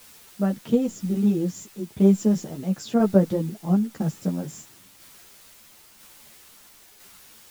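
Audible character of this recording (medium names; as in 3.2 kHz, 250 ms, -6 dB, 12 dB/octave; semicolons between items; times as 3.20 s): a quantiser's noise floor 8-bit, dither triangular; tremolo saw down 1 Hz, depth 35%; a shimmering, thickened sound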